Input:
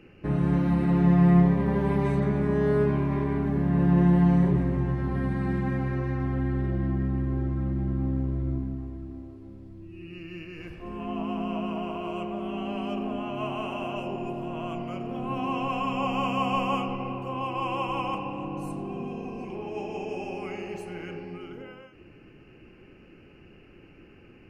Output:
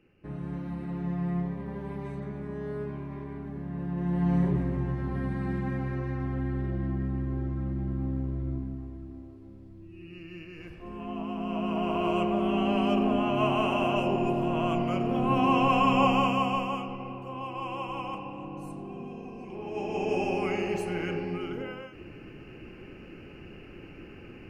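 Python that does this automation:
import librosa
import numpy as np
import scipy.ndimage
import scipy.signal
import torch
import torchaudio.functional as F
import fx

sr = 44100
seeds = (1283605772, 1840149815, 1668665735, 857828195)

y = fx.gain(x, sr, db=fx.line((3.96, -12.0), (4.36, -3.5), (11.36, -3.5), (12.02, 6.0), (16.03, 6.0), (16.76, -5.5), (19.43, -5.5), (20.14, 6.0)))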